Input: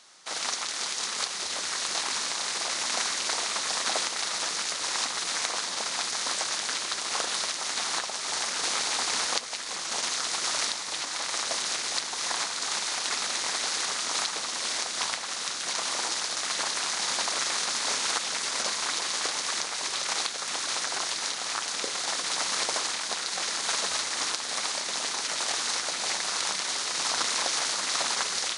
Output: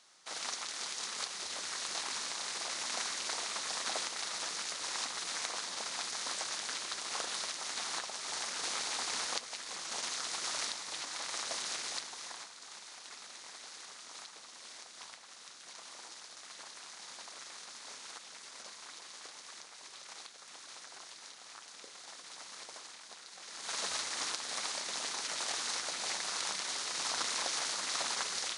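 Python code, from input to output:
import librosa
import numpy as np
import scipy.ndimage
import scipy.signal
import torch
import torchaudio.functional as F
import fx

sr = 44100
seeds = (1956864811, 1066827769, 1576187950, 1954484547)

y = fx.gain(x, sr, db=fx.line((11.89, -8.5), (12.55, -20.0), (23.42, -20.0), (23.82, -7.5)))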